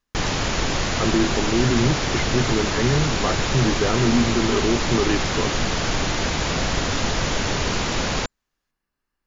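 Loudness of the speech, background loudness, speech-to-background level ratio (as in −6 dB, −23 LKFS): −23.5 LKFS, −23.0 LKFS, −0.5 dB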